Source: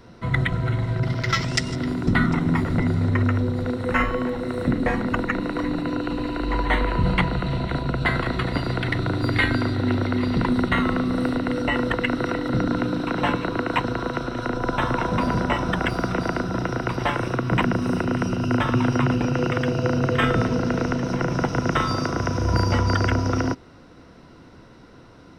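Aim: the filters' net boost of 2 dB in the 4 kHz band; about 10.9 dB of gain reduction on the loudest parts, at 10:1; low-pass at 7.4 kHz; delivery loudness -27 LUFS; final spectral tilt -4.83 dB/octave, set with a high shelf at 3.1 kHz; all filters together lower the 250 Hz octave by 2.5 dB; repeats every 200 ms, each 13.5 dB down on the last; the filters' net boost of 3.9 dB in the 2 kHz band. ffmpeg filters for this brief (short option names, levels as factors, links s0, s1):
-af "lowpass=7400,equalizer=f=250:t=o:g=-3,equalizer=f=2000:t=o:g=6,highshelf=f=3100:g=-9,equalizer=f=4000:t=o:g=7.5,acompressor=threshold=0.0562:ratio=10,aecho=1:1:200|400:0.211|0.0444,volume=1.33"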